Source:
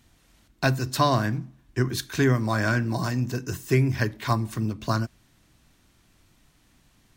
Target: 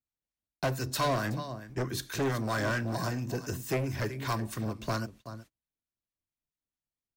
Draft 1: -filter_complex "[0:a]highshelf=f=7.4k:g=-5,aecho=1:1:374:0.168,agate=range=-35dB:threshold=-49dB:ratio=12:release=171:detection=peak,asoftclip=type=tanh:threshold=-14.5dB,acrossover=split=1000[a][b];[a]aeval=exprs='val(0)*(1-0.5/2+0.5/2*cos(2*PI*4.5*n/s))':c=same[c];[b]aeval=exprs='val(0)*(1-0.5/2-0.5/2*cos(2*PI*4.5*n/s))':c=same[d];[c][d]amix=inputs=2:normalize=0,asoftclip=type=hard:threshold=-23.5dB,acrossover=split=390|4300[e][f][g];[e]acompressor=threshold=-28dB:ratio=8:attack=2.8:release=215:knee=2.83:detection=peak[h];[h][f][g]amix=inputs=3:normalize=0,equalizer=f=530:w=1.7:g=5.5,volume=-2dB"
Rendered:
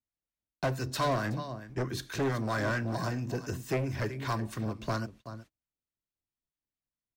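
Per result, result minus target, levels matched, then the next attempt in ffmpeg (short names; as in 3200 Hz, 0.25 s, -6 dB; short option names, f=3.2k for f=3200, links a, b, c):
soft clip: distortion +16 dB; 8000 Hz band -4.0 dB
-filter_complex "[0:a]highshelf=f=7.4k:g=-5,aecho=1:1:374:0.168,agate=range=-35dB:threshold=-49dB:ratio=12:release=171:detection=peak,asoftclip=type=tanh:threshold=-4.5dB,acrossover=split=1000[a][b];[a]aeval=exprs='val(0)*(1-0.5/2+0.5/2*cos(2*PI*4.5*n/s))':c=same[c];[b]aeval=exprs='val(0)*(1-0.5/2-0.5/2*cos(2*PI*4.5*n/s))':c=same[d];[c][d]amix=inputs=2:normalize=0,asoftclip=type=hard:threshold=-23.5dB,acrossover=split=390|4300[e][f][g];[e]acompressor=threshold=-28dB:ratio=8:attack=2.8:release=215:knee=2.83:detection=peak[h];[h][f][g]amix=inputs=3:normalize=0,equalizer=f=530:w=1.7:g=5.5,volume=-2dB"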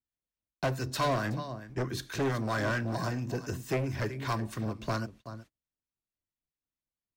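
8000 Hz band -3.5 dB
-filter_complex "[0:a]highshelf=f=7.4k:g=4,aecho=1:1:374:0.168,agate=range=-35dB:threshold=-49dB:ratio=12:release=171:detection=peak,asoftclip=type=tanh:threshold=-4.5dB,acrossover=split=1000[a][b];[a]aeval=exprs='val(0)*(1-0.5/2+0.5/2*cos(2*PI*4.5*n/s))':c=same[c];[b]aeval=exprs='val(0)*(1-0.5/2-0.5/2*cos(2*PI*4.5*n/s))':c=same[d];[c][d]amix=inputs=2:normalize=0,asoftclip=type=hard:threshold=-23.5dB,acrossover=split=390|4300[e][f][g];[e]acompressor=threshold=-28dB:ratio=8:attack=2.8:release=215:knee=2.83:detection=peak[h];[h][f][g]amix=inputs=3:normalize=0,equalizer=f=530:w=1.7:g=5.5,volume=-2dB"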